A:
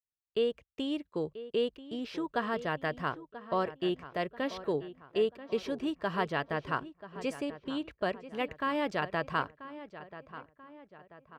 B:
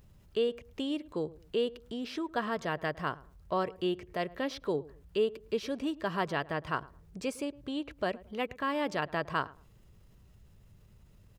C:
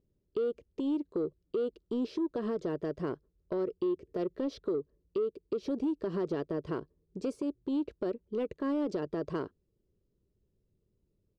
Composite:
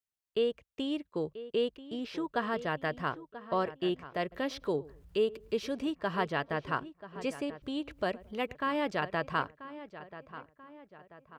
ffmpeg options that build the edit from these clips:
-filter_complex "[1:a]asplit=2[a][b];[0:a]asplit=3[c][d][e];[c]atrim=end=4.322[f];[a]atrim=start=4.318:end=5.862[g];[d]atrim=start=5.858:end=7.622[h];[b]atrim=start=7.618:end=8.552[i];[e]atrim=start=8.548[j];[f][g]acrossfade=d=0.004:c1=hsin:c2=hsin[k];[k][h]acrossfade=d=0.004:c1=hsin:c2=hsin[l];[l][i]acrossfade=d=0.004:c1=hsin:c2=hsin[m];[m][j]acrossfade=d=0.004:c1=hsin:c2=hsin"

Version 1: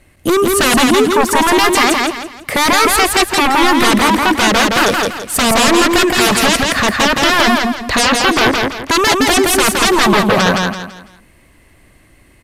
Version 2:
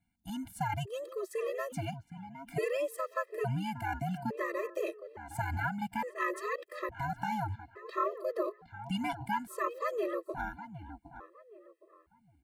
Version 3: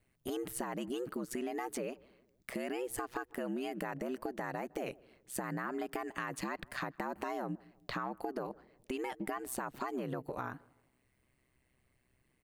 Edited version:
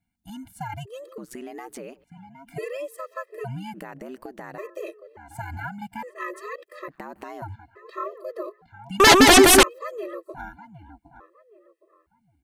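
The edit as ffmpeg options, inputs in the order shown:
-filter_complex "[2:a]asplit=3[a][b][c];[1:a]asplit=5[d][e][f][g][h];[d]atrim=end=1.182[i];[a]atrim=start=1.178:end=2.042[j];[e]atrim=start=2.038:end=3.742[k];[b]atrim=start=3.738:end=4.582[l];[f]atrim=start=4.578:end=6.882[m];[c]atrim=start=6.878:end=7.422[n];[g]atrim=start=7.418:end=9.002[o];[0:a]atrim=start=8.998:end=9.632[p];[h]atrim=start=9.628[q];[i][j]acrossfade=d=0.004:c1=hsin:c2=hsin[r];[r][k]acrossfade=d=0.004:c1=hsin:c2=hsin[s];[s][l]acrossfade=d=0.004:c1=hsin:c2=hsin[t];[t][m]acrossfade=d=0.004:c1=hsin:c2=hsin[u];[u][n]acrossfade=d=0.004:c1=hsin:c2=hsin[v];[v][o]acrossfade=d=0.004:c1=hsin:c2=hsin[w];[w][p]acrossfade=d=0.004:c1=hsin:c2=hsin[x];[x][q]acrossfade=d=0.004:c1=hsin:c2=hsin"

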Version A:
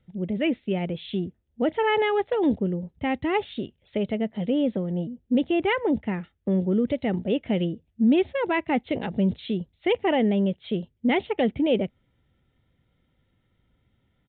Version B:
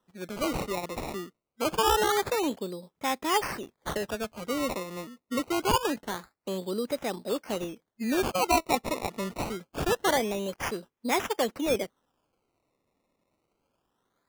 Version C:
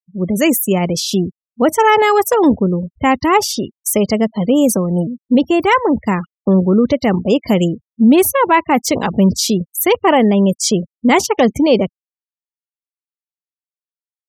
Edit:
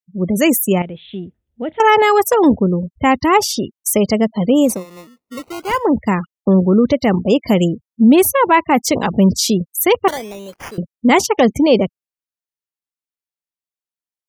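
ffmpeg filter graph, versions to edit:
-filter_complex "[1:a]asplit=2[a][b];[2:a]asplit=4[c][d][e][f];[c]atrim=end=0.822[g];[0:a]atrim=start=0.818:end=1.802[h];[d]atrim=start=1.798:end=4.86[i];[a]atrim=start=4.62:end=5.87[j];[e]atrim=start=5.63:end=10.082[k];[b]atrim=start=10.078:end=10.782[l];[f]atrim=start=10.778[m];[g][h]acrossfade=d=0.004:c1=hsin:c2=hsin[n];[n][i]acrossfade=d=0.004:c1=hsin:c2=hsin[o];[o][j]acrossfade=d=0.24:c1=tri:c2=tri[p];[p][k]acrossfade=d=0.24:c1=tri:c2=tri[q];[q][l]acrossfade=d=0.004:c1=hsin:c2=hsin[r];[r][m]acrossfade=d=0.004:c1=hsin:c2=hsin"

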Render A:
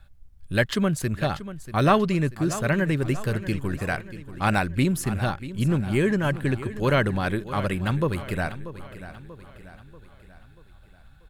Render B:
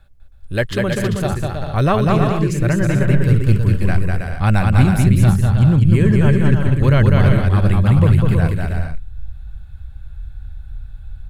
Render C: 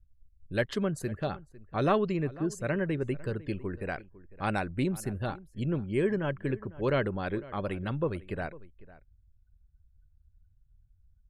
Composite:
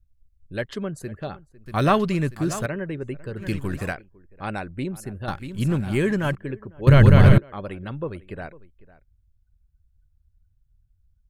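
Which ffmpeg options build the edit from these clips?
-filter_complex "[0:a]asplit=3[a][b][c];[2:a]asplit=5[d][e][f][g][h];[d]atrim=end=1.662[i];[a]atrim=start=1.658:end=2.662[j];[e]atrim=start=2.658:end=3.42[k];[b]atrim=start=3.36:end=3.95[l];[f]atrim=start=3.89:end=5.282[m];[c]atrim=start=5.278:end=6.352[n];[g]atrim=start=6.348:end=6.872[o];[1:a]atrim=start=6.868:end=7.382[p];[h]atrim=start=7.378[q];[i][j]acrossfade=d=0.004:c1=hsin:c2=hsin[r];[r][k]acrossfade=d=0.004:c1=hsin:c2=hsin[s];[s][l]acrossfade=d=0.06:c1=tri:c2=tri[t];[t][m]acrossfade=d=0.06:c1=tri:c2=tri[u];[u][n]acrossfade=d=0.004:c1=hsin:c2=hsin[v];[v][o]acrossfade=d=0.004:c1=hsin:c2=hsin[w];[w][p]acrossfade=d=0.004:c1=hsin:c2=hsin[x];[x][q]acrossfade=d=0.004:c1=hsin:c2=hsin"

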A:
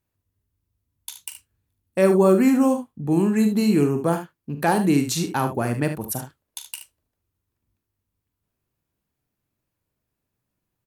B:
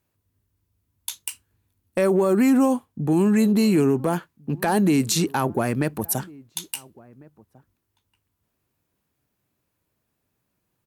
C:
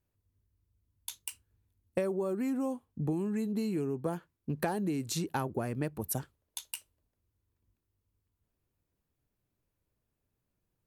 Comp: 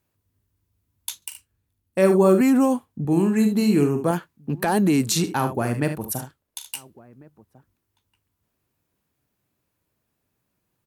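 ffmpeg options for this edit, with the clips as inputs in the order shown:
-filter_complex "[0:a]asplit=3[a][b][c];[1:a]asplit=4[d][e][f][g];[d]atrim=end=1.222[h];[a]atrim=start=1.218:end=2.412[i];[e]atrim=start=2.408:end=3.052[j];[b]atrim=start=3.048:end=4.112[k];[f]atrim=start=4.108:end=5.242[l];[c]atrim=start=5.238:end=6.742[m];[g]atrim=start=6.738[n];[h][i]acrossfade=d=0.004:c1=hsin:c2=hsin[o];[o][j]acrossfade=d=0.004:c1=hsin:c2=hsin[p];[p][k]acrossfade=d=0.004:c1=hsin:c2=hsin[q];[q][l]acrossfade=d=0.004:c1=hsin:c2=hsin[r];[r][m]acrossfade=d=0.004:c1=hsin:c2=hsin[s];[s][n]acrossfade=d=0.004:c1=hsin:c2=hsin"

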